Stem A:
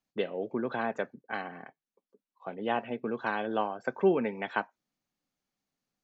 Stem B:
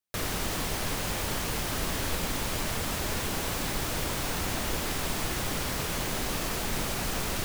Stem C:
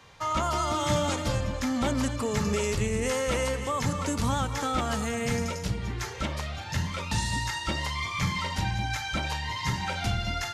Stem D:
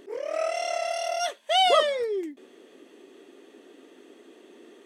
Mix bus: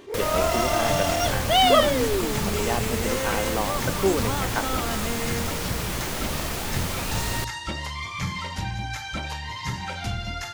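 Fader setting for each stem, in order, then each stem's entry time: +2.0, +1.5, -1.0, +2.5 dB; 0.00, 0.00, 0.00, 0.00 s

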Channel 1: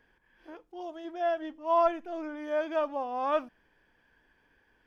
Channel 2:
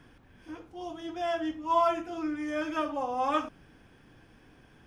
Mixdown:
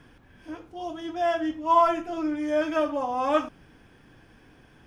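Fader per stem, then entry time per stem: 0.0, +2.5 dB; 0.00, 0.00 s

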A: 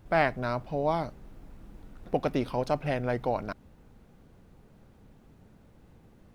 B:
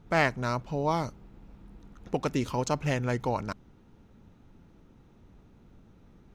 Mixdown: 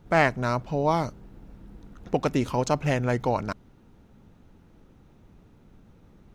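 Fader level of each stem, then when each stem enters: -5.5, +1.0 dB; 0.00, 0.00 s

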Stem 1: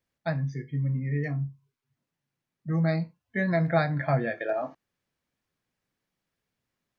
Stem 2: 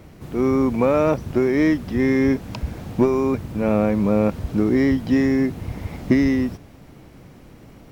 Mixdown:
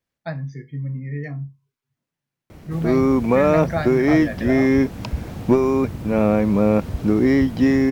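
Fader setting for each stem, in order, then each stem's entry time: 0.0, +1.5 dB; 0.00, 2.50 s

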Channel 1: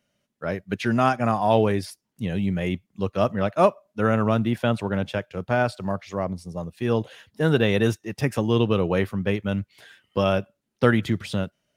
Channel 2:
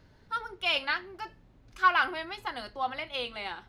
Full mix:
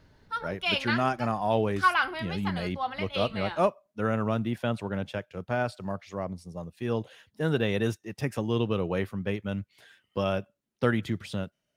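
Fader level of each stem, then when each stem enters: -6.5, 0.0 dB; 0.00, 0.00 s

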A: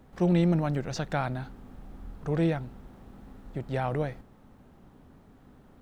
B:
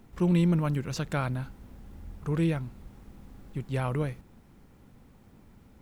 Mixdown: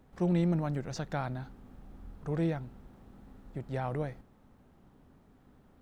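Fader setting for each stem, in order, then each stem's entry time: -6.0, -19.5 dB; 0.00, 0.00 s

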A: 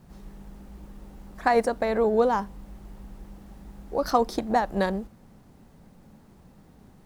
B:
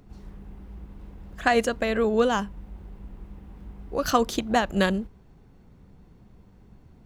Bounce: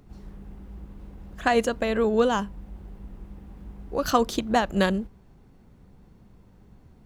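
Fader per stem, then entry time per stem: -12.0, -1.0 dB; 0.00, 0.00 s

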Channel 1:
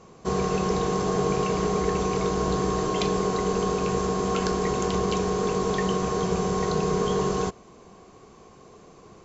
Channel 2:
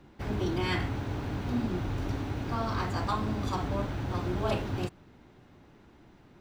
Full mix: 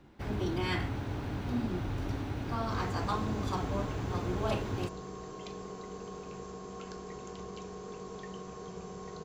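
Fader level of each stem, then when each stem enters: -18.5, -2.5 dB; 2.45, 0.00 s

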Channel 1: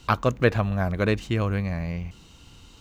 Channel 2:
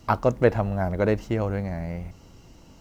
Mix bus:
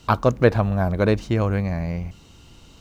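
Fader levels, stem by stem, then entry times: -0.5, -3.0 dB; 0.00, 0.00 s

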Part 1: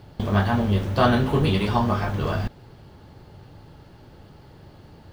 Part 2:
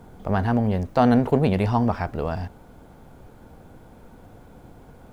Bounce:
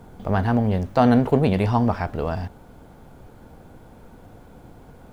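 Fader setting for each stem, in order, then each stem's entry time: -17.0, +1.0 dB; 0.00, 0.00 s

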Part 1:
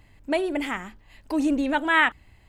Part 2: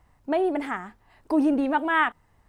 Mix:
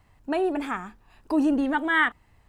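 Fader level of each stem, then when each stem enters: -9.0, -0.5 dB; 0.00, 0.00 s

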